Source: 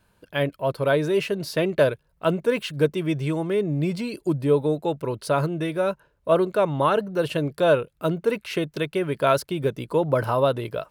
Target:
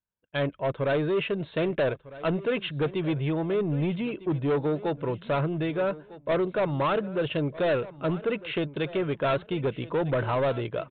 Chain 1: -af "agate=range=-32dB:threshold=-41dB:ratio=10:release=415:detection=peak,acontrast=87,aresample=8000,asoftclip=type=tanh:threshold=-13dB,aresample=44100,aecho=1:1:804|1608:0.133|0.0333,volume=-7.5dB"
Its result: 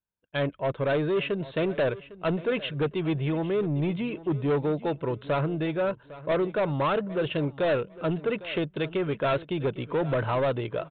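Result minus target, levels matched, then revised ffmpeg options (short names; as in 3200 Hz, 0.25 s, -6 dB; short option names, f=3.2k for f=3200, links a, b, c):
echo 0.449 s early
-af "agate=range=-32dB:threshold=-41dB:ratio=10:release=415:detection=peak,acontrast=87,aresample=8000,asoftclip=type=tanh:threshold=-13dB,aresample=44100,aecho=1:1:1253|2506:0.133|0.0333,volume=-7.5dB"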